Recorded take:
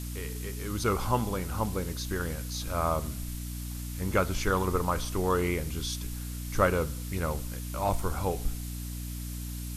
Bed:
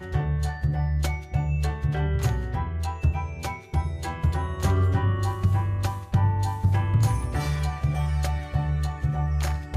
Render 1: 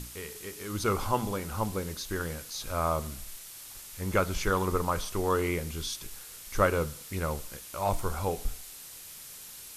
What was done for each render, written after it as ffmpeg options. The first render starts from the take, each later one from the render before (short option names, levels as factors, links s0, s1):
-af "bandreject=f=60:t=h:w=6,bandreject=f=120:t=h:w=6,bandreject=f=180:t=h:w=6,bandreject=f=240:t=h:w=6,bandreject=f=300:t=h:w=6"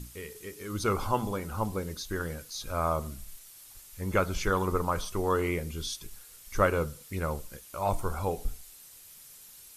-af "afftdn=nr=8:nf=-46"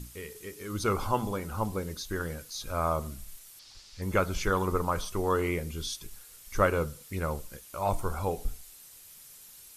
-filter_complex "[0:a]asettb=1/sr,asplit=3[s0][s1][s2];[s0]atrim=end=3.594[s3];[s1]atrim=start=3.59:end=4.02,asetpts=PTS-STARTPTS,afade=t=in:d=0.004:c=qsin,afade=t=out:st=0.426:d=0.004:c=qsin,lowpass=f=4800:t=q:w=3.1[s4];[s2]atrim=start=4.016[s5];[s3][s4]acrossfade=d=0.004:c1=hsin:c2=qsin[s6];[s6][s5]acrossfade=d=0.004:c1=qsin:c2=hsin"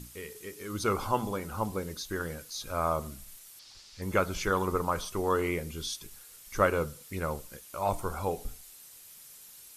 -af "lowshelf=f=86:g=-8"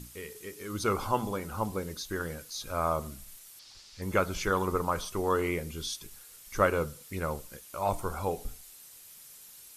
-af anull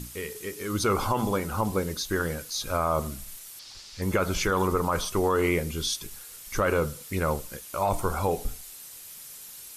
-af "acontrast=84,alimiter=limit=0.178:level=0:latency=1:release=41"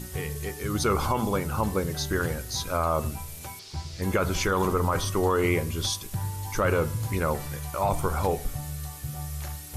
-filter_complex "[1:a]volume=0.316[s0];[0:a][s0]amix=inputs=2:normalize=0"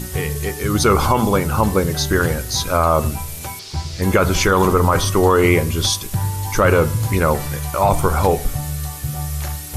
-af "volume=3.16"